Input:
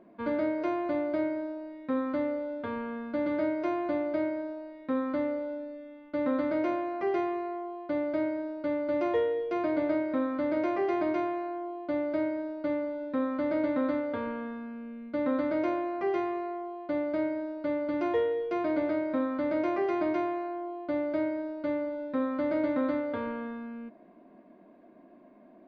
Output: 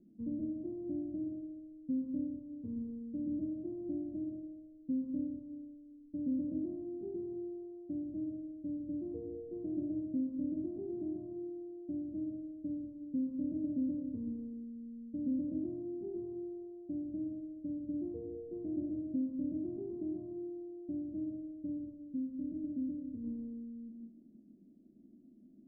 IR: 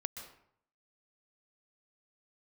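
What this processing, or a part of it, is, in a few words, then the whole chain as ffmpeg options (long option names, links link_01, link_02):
next room: -filter_complex "[0:a]asettb=1/sr,asplit=3[link_01][link_02][link_03];[link_01]atrim=end=21.944[link_04];[link_02]atrim=start=21.94:end=23.24,asetpts=PTS-STARTPTS,afade=type=in:duration=0.004:curve=qsin,afade=type=out:start_time=1.296:duration=0.004:curve=qsin,equalizer=frequency=125:width_type=o:width=1:gain=-7,equalizer=frequency=500:width_type=o:width=1:gain=-6,equalizer=frequency=1000:width_type=o:width=1:gain=-10,equalizer=frequency=2000:width_type=o:width=1:gain=9[link_05];[link_03]atrim=start=23.236[link_06];[link_04][link_05]acrossfade=duration=0.004:curve1=hsin:curve2=qsin[link_07];[link_07][link_06]acrossfade=duration=0.004:curve1=qsin:curve2=hsin,lowpass=frequency=270:width=0.5412,lowpass=frequency=270:width=1.3066[link_08];[1:a]atrim=start_sample=2205[link_09];[link_08][link_09]afir=irnorm=-1:irlink=0,volume=1dB"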